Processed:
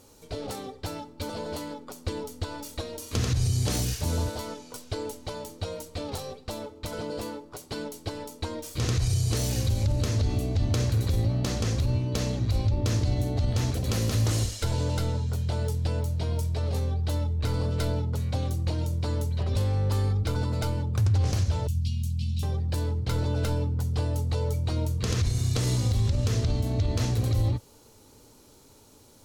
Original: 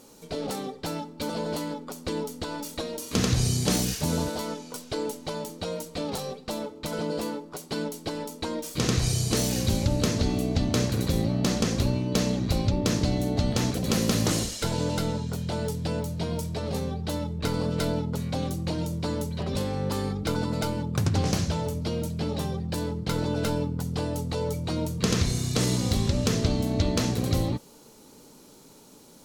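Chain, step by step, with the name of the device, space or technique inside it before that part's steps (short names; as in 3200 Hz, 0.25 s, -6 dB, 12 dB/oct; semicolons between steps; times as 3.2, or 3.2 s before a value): 21.67–22.43 Chebyshev band-stop 220–2600 Hz, order 4; car stereo with a boomy subwoofer (resonant low shelf 130 Hz +7 dB, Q 3; limiter -14 dBFS, peak gain reduction 11 dB); gain -3 dB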